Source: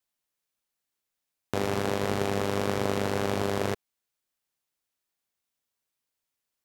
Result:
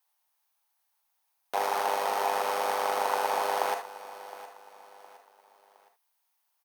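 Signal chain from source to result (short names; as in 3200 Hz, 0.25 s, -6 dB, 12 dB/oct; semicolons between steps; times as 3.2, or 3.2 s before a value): reverb, pre-delay 34 ms, DRR 11 dB; one-sided clip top -25 dBFS; resonant high-pass 840 Hz, resonance Q 4.1; high shelf 11000 Hz +9 dB; notch 7400 Hz, Q 8.1; feedback echo 0.714 s, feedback 39%, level -16 dB; gain +3 dB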